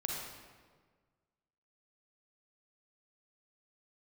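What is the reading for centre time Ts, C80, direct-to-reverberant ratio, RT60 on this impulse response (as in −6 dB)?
83 ms, 2.0 dB, −1.5 dB, 1.6 s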